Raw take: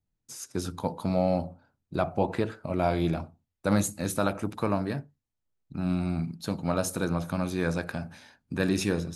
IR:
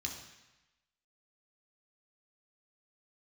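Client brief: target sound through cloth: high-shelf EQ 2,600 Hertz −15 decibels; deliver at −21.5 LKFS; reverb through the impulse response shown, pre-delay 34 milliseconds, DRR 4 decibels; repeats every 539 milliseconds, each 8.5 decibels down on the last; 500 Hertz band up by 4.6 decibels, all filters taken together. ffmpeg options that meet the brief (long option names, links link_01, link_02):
-filter_complex "[0:a]equalizer=frequency=500:width_type=o:gain=6.5,aecho=1:1:539|1078|1617|2156:0.376|0.143|0.0543|0.0206,asplit=2[link_01][link_02];[1:a]atrim=start_sample=2205,adelay=34[link_03];[link_02][link_03]afir=irnorm=-1:irlink=0,volume=-4dB[link_04];[link_01][link_04]amix=inputs=2:normalize=0,highshelf=frequency=2600:gain=-15,volume=4.5dB"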